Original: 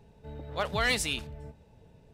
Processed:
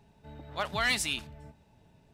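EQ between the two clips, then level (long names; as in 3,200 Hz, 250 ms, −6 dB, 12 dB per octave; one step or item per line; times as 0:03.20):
low-shelf EQ 140 Hz −8 dB
parametric band 480 Hz −12.5 dB 0.34 octaves
0.0 dB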